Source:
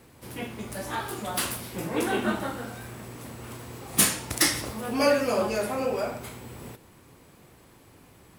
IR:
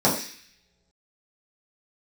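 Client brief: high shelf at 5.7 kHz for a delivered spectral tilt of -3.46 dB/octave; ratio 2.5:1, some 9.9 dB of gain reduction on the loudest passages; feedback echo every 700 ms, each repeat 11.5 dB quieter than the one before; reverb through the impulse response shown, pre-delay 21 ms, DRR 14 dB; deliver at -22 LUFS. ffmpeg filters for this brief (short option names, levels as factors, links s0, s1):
-filter_complex "[0:a]highshelf=f=5700:g=5,acompressor=threshold=0.0398:ratio=2.5,aecho=1:1:700|1400|2100:0.266|0.0718|0.0194,asplit=2[s0][s1];[1:a]atrim=start_sample=2205,adelay=21[s2];[s1][s2]afir=irnorm=-1:irlink=0,volume=0.0266[s3];[s0][s3]amix=inputs=2:normalize=0,volume=2.82"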